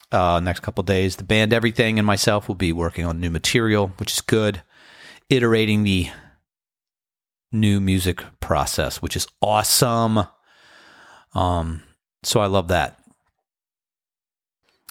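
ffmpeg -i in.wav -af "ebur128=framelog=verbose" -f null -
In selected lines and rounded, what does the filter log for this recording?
Integrated loudness:
  I:         -20.4 LUFS
  Threshold: -31.3 LUFS
Loudness range:
  LRA:         4.7 LU
  Threshold: -41.8 LUFS
  LRA low:   -24.6 LUFS
  LRA high:  -20.0 LUFS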